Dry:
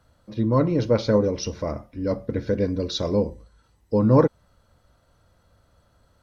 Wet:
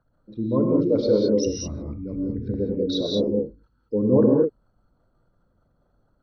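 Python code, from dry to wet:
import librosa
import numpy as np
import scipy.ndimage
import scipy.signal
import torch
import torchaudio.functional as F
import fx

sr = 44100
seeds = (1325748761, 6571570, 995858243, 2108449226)

y = fx.envelope_sharpen(x, sr, power=2.0)
y = fx.peak_eq(y, sr, hz=fx.steps((0.0, 74.0), (1.46, 600.0), (2.54, 73.0)), db=-15.0, octaves=1.2)
y = fx.rev_gated(y, sr, seeds[0], gate_ms=230, shape='rising', drr_db=-1.0)
y = y * 10.0 ** (-2.0 / 20.0)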